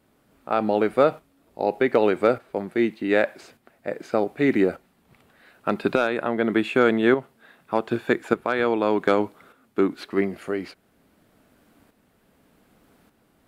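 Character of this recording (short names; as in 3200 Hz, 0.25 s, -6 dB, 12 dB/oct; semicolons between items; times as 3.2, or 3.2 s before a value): tremolo saw up 0.84 Hz, depth 55%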